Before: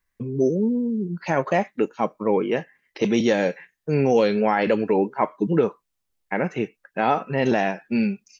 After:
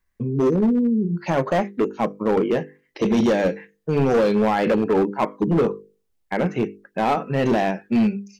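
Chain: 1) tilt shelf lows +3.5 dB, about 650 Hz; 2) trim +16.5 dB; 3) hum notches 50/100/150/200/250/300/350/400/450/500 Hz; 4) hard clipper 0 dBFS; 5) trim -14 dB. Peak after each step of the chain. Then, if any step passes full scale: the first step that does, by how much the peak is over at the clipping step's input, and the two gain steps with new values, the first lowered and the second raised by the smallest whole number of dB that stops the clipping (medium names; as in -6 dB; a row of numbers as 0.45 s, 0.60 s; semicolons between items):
-7.0 dBFS, +9.5 dBFS, +9.0 dBFS, 0.0 dBFS, -14.0 dBFS; step 2, 9.0 dB; step 2 +7.5 dB, step 5 -5 dB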